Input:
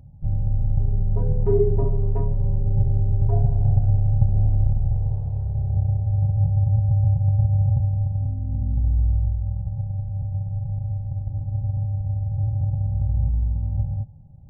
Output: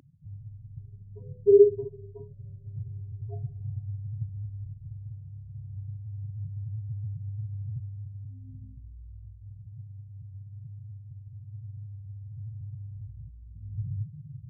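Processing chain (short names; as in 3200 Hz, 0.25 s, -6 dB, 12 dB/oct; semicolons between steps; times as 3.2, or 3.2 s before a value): spectral contrast raised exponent 2.3; high-pass sweep 280 Hz -> 120 Hz, 13.38–14.42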